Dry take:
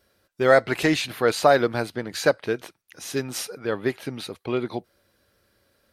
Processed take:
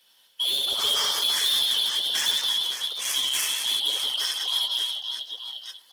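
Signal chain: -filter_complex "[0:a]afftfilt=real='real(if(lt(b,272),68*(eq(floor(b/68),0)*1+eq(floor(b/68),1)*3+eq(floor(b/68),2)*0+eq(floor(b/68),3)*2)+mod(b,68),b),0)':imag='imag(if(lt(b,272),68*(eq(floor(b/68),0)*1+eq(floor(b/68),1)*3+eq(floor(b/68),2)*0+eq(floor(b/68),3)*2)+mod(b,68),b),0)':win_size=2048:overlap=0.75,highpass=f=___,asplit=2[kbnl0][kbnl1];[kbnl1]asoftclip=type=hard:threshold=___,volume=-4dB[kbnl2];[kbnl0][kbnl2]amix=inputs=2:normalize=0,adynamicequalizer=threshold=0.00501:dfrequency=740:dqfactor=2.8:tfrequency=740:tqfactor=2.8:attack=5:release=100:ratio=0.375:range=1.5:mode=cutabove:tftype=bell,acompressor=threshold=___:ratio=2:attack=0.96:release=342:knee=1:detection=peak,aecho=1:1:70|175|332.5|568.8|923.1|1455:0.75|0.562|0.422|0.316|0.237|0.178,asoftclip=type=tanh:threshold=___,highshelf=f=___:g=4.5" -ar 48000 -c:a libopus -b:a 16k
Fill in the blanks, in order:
540, -18.5dB, -23dB, -21dB, 4600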